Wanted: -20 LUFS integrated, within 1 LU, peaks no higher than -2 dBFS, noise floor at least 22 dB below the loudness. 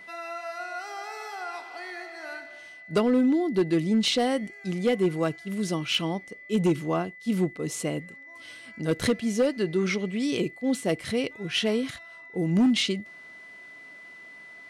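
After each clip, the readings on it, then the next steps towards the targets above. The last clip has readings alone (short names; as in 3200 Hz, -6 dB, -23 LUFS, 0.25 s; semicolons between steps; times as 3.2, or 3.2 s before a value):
clipped 0.8%; flat tops at -16.5 dBFS; steady tone 2000 Hz; tone level -44 dBFS; loudness -27.0 LUFS; peak -16.5 dBFS; loudness target -20.0 LUFS
-> clip repair -16.5 dBFS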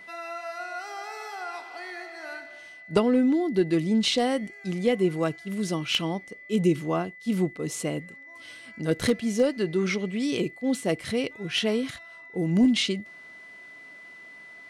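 clipped 0.0%; steady tone 2000 Hz; tone level -44 dBFS
-> notch 2000 Hz, Q 30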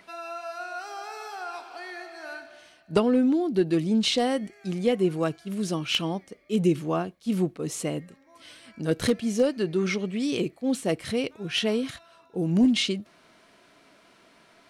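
steady tone none; loudness -27.0 LUFS; peak -7.5 dBFS; loudness target -20.0 LUFS
-> gain +7 dB; limiter -2 dBFS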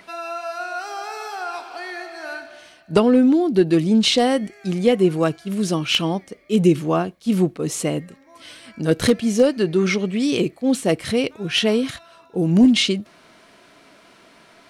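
loudness -20.0 LUFS; peak -2.0 dBFS; noise floor -51 dBFS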